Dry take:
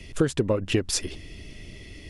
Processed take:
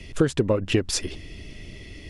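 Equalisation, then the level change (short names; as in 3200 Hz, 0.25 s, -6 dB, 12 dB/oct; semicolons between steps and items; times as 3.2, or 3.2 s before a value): high shelf 9800 Hz -7.5 dB; +2.0 dB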